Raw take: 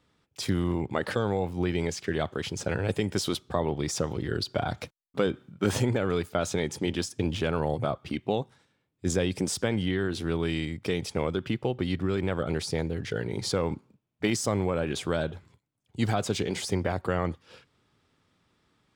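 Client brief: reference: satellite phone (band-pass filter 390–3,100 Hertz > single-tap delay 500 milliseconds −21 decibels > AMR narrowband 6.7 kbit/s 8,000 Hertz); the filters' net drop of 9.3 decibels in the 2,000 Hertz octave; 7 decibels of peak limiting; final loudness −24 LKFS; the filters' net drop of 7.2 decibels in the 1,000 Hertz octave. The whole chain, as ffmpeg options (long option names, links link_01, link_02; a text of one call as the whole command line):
ffmpeg -i in.wav -af "equalizer=frequency=1000:width_type=o:gain=-8,equalizer=frequency=2000:width_type=o:gain=-8.5,alimiter=limit=-20.5dB:level=0:latency=1,highpass=390,lowpass=3100,aecho=1:1:500:0.0891,volume=15.5dB" -ar 8000 -c:a libopencore_amrnb -b:a 6700 out.amr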